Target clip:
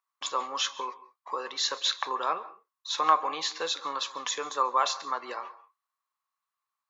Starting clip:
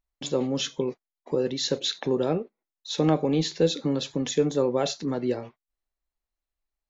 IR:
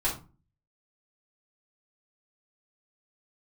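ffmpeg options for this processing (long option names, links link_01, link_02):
-filter_complex "[0:a]highpass=frequency=1100:width_type=q:width=9.8,asplit=2[link_01][link_02];[1:a]atrim=start_sample=2205,atrim=end_sample=3969,adelay=132[link_03];[link_02][link_03]afir=irnorm=-1:irlink=0,volume=-25.5dB[link_04];[link_01][link_04]amix=inputs=2:normalize=0"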